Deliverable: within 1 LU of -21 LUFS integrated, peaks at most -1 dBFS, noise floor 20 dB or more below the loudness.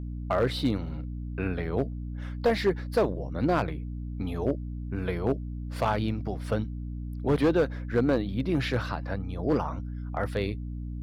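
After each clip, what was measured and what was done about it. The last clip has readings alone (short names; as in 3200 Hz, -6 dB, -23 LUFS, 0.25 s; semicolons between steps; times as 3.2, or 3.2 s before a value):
clipped 0.7%; flat tops at -17.0 dBFS; hum 60 Hz; harmonics up to 300 Hz; hum level -33 dBFS; loudness -29.5 LUFS; peak -17.0 dBFS; loudness target -21.0 LUFS
-> clip repair -17 dBFS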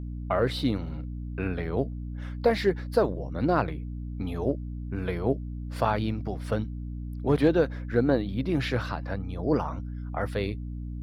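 clipped 0.0%; hum 60 Hz; harmonics up to 300 Hz; hum level -33 dBFS
-> notches 60/120/180/240/300 Hz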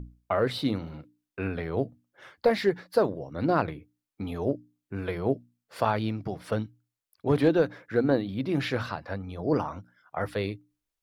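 hum none; loudness -29.0 LUFS; peak -9.5 dBFS; loudness target -21.0 LUFS
-> gain +8 dB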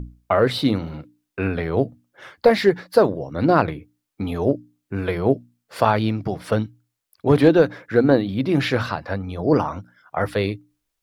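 loudness -21.0 LUFS; peak -1.5 dBFS; noise floor -80 dBFS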